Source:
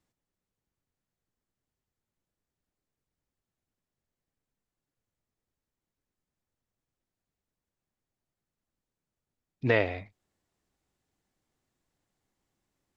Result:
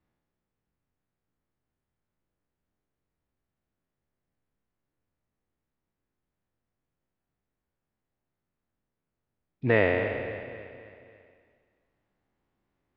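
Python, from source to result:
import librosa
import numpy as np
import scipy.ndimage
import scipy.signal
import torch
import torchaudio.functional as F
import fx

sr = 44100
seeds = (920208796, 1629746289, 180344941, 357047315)

p1 = fx.spec_trails(x, sr, decay_s=1.77)
p2 = scipy.signal.sosfilt(scipy.signal.butter(2, 2400.0, 'lowpass', fs=sr, output='sos'), p1)
y = p2 + fx.echo_feedback(p2, sr, ms=273, feedback_pct=51, wet_db=-14.0, dry=0)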